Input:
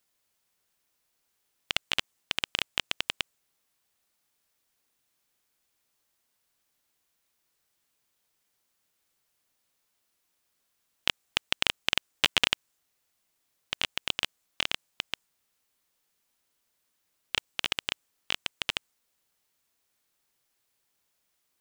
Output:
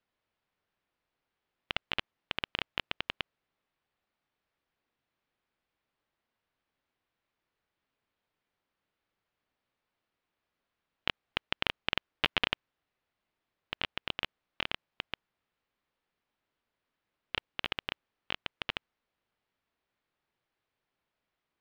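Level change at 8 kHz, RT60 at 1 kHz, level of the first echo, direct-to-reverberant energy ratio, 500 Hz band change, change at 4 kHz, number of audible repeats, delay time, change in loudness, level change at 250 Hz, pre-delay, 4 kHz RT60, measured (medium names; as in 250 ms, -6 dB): under -20 dB, no reverb, no echo, no reverb, -1.0 dB, -7.0 dB, no echo, no echo, -5.5 dB, -0.5 dB, no reverb, no reverb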